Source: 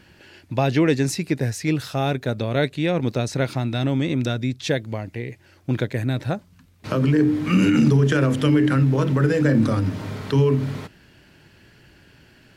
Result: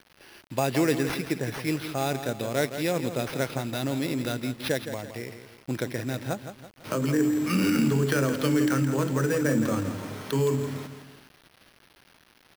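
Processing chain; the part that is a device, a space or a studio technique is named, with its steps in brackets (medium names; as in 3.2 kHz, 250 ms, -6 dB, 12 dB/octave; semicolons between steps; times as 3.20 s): high-pass 250 Hz 6 dB/octave; feedback delay 166 ms, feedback 42%, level -10 dB; early 8-bit sampler (sample-rate reducer 7.5 kHz, jitter 0%; bit crusher 8-bit); trim -3.5 dB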